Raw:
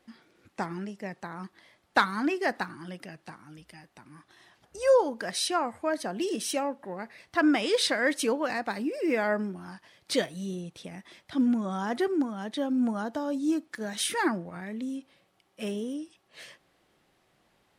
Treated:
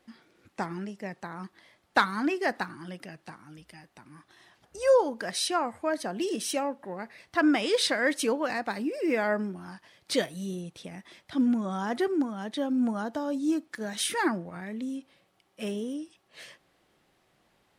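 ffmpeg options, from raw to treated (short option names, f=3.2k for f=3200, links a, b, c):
-filter_complex "[0:a]asettb=1/sr,asplit=3[a][b][c];[a]atrim=end=10.204[d];[b]atrim=start=10.2:end=10.71,asetpts=PTS-STARTPTS,afade=t=in:d=0.004:c=qsin,afade=t=out:st=0.506:d=0.004:c=qsin,equalizer=f=12k:w=1.5:g=7[e];[c]atrim=start=10.706[f];[d][e]acrossfade=d=0.004:c1=hsin:c2=qsin[g];[g][f]acrossfade=d=0.004:c1=qsin:c2=hsin"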